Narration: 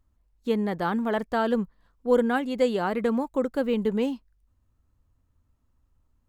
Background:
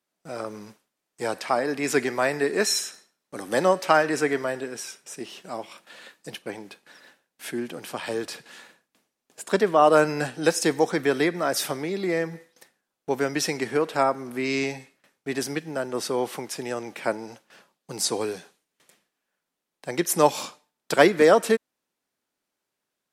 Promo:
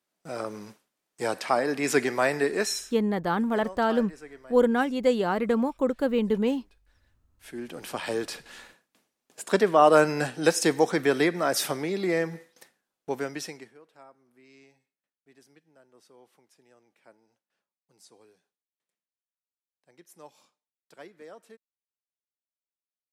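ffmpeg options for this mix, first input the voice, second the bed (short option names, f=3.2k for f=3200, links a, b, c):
-filter_complex "[0:a]adelay=2450,volume=0.5dB[a];[1:a]volume=20.5dB,afade=t=out:st=2.4:d=0.61:silence=0.0891251,afade=t=in:st=7.36:d=0.54:silence=0.0891251,afade=t=out:st=12.68:d=1.06:silence=0.0334965[b];[a][b]amix=inputs=2:normalize=0"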